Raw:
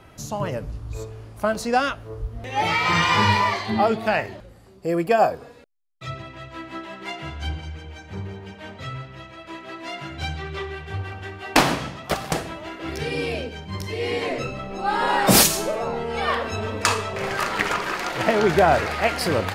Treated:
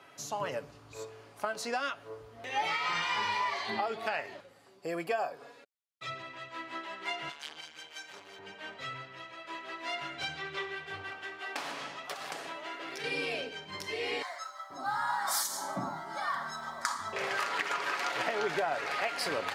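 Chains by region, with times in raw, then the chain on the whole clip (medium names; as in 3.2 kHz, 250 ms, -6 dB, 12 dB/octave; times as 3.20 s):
7.29–8.39 s: RIAA curve recording + transformer saturation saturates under 3 kHz
11.10–13.04 s: high-pass 220 Hz 6 dB/octave + compression, threshold -30 dBFS
14.22–17.13 s: static phaser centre 1.1 kHz, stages 4 + modulation noise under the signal 32 dB + bands offset in time highs, lows 480 ms, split 610 Hz
whole clip: frequency weighting A; compression 6:1, threshold -25 dBFS; comb 7.1 ms, depth 34%; trim -4.5 dB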